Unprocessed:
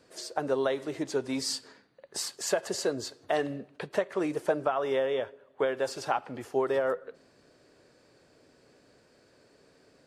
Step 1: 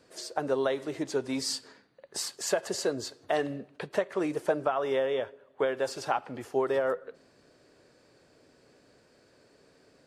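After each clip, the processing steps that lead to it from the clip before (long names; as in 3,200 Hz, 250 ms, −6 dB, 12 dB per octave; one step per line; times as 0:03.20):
no processing that can be heard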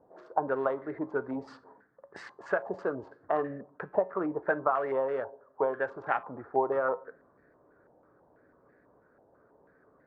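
adaptive Wiener filter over 15 samples
tuned comb filter 62 Hz, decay 0.35 s, harmonics odd, mix 50%
low-pass on a step sequencer 6.1 Hz 830–1,800 Hz
level +1.5 dB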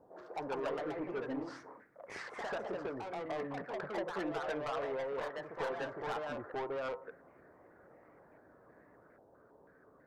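in parallel at +3 dB: downward compressor, threshold −38 dBFS, peak gain reduction 16.5 dB
on the sum: soft clipping −27 dBFS, distortion −8 dB
delay with pitch and tempo change per echo 191 ms, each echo +2 semitones, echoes 2
level −7.5 dB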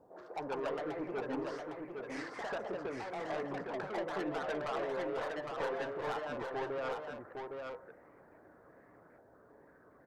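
single-tap delay 809 ms −5 dB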